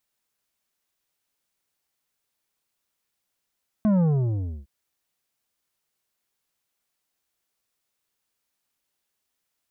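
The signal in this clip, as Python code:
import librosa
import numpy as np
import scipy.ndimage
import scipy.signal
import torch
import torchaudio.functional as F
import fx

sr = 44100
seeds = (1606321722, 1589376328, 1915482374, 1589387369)

y = fx.sub_drop(sr, level_db=-18.0, start_hz=220.0, length_s=0.81, drive_db=9.0, fade_s=0.66, end_hz=65.0)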